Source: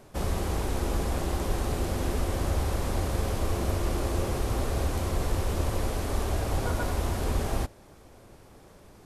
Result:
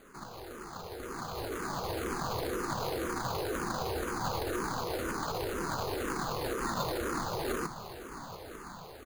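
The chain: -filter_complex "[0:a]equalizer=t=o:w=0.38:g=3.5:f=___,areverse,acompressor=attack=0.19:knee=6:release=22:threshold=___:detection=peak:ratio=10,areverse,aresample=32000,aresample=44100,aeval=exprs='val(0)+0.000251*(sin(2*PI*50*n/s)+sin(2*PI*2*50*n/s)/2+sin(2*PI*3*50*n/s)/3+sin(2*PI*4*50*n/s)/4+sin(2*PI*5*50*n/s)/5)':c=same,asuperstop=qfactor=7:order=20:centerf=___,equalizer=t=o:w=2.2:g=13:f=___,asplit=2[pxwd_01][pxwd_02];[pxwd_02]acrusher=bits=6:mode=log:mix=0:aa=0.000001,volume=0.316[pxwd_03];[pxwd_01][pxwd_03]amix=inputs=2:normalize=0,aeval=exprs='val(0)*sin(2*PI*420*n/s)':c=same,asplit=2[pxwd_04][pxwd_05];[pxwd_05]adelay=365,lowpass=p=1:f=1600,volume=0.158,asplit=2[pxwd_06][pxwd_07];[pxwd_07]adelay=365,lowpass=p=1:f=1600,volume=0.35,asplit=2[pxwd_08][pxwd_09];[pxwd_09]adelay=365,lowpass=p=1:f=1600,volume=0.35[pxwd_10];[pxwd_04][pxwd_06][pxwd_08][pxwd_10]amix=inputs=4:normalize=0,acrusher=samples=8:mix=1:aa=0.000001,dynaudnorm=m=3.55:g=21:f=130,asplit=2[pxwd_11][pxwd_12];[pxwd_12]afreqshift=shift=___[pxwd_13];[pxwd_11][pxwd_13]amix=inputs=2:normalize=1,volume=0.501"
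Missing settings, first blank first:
2500, 0.0141, 4400, 900, -2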